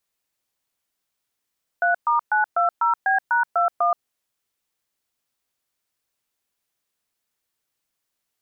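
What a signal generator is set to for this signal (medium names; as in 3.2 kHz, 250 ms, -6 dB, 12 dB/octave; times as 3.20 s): DTMF "3*920B#21", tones 126 ms, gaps 122 ms, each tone -19 dBFS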